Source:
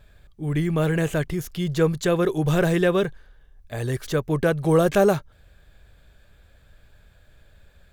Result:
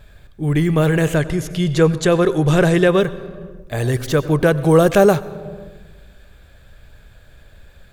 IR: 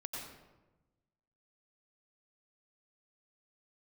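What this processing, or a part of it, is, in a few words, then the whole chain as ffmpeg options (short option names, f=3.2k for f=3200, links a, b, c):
compressed reverb return: -filter_complex "[0:a]asplit=2[a][b];[1:a]atrim=start_sample=2205[c];[b][c]afir=irnorm=-1:irlink=0,acompressor=threshold=-27dB:ratio=5,volume=-4.5dB[d];[a][d]amix=inputs=2:normalize=0,asettb=1/sr,asplit=3[e][f][g];[e]atrim=end=1.154[h];[f]atrim=start=1.15:end=3,asetpts=PTS-STARTPTS,afade=t=in:d=0.004:c=qsin,afade=t=out:st=1.846:d=0.004:c=qsin,lowpass=f=11k:w=0.5412,lowpass=f=11k:w=1.3066[i];[g]atrim=start=2.996[j];[h][i]acrossfade=d=0.004:c1=hsin:c2=qsin[k];[k][j]acrossfade=d=0.004:c1=qsin:c2=hsin,volume=5dB"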